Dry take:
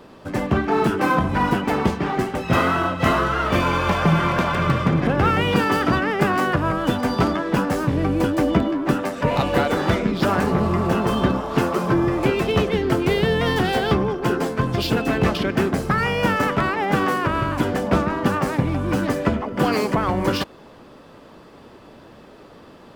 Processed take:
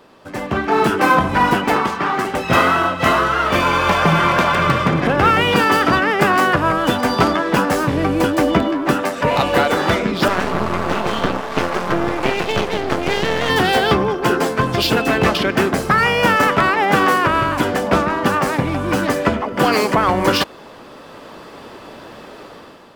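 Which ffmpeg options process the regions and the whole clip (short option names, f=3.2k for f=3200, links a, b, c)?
-filter_complex "[0:a]asettb=1/sr,asplit=3[a][b][c];[a]atrim=end=1.764[d];[b]atrim=start=1.76:end=2.25,asetpts=PTS-STARTPTS,afade=t=in:d=0.004:c=qsin,afade=t=out:st=0.486:d=0.004:c=qsin,highpass=f=120:p=1,equalizer=f=1.2k:t=o:w=1.3:g=12.5,acrossover=split=390|2500[e][f][g];[e]acompressor=threshold=-25dB:ratio=4[h];[f]acompressor=threshold=-27dB:ratio=4[i];[g]acompressor=threshold=-38dB:ratio=4[j];[h][i][j]amix=inputs=3:normalize=0[k];[c]atrim=start=2.246[l];[d][k]acrossfade=d=0.004:c1=hsin:c2=qsin[m];[m][l]acrossfade=d=0.004:c1=qsin:c2=hsin,asettb=1/sr,asplit=3[n][o][p];[n]atrim=end=10.284[q];[o]atrim=start=10.28:end=13.5,asetpts=PTS-STARTPTS,afade=t=in:d=0.004:c=qsin,afade=t=out:st=3.216:d=0.004:c=qsin,acrossover=split=6500[r][s];[s]acompressor=threshold=-53dB:ratio=4:attack=1:release=60[t];[r][t]amix=inputs=2:normalize=0,aeval=exprs='max(val(0),0)':c=same[u];[p]atrim=start=13.496[v];[q][u]acrossfade=d=0.004:c1=hsin:c2=qsin[w];[w][v]acrossfade=d=0.004:c1=qsin:c2=hsin,lowshelf=f=340:g=-9,dynaudnorm=f=170:g=7:m=11.5dB"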